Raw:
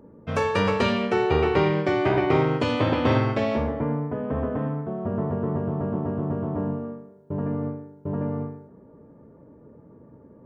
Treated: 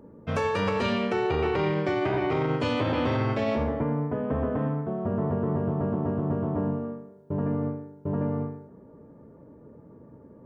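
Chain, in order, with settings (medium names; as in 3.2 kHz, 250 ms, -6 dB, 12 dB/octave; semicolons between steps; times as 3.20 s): peak limiter -17.5 dBFS, peak gain reduction 9 dB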